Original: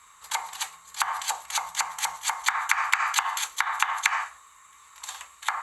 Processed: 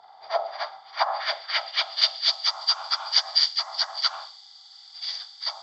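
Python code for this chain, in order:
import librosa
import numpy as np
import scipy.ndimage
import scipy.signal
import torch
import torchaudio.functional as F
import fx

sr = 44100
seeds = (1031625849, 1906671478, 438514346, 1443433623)

y = fx.partial_stretch(x, sr, pct=77)
y = fx.filter_sweep_bandpass(y, sr, from_hz=690.0, to_hz=5400.0, start_s=0.41, end_s=2.5, q=1.2)
y = fx.high_shelf_res(y, sr, hz=3900.0, db=8.0, q=3.0)
y = F.gain(torch.from_numpy(y), 8.5).numpy()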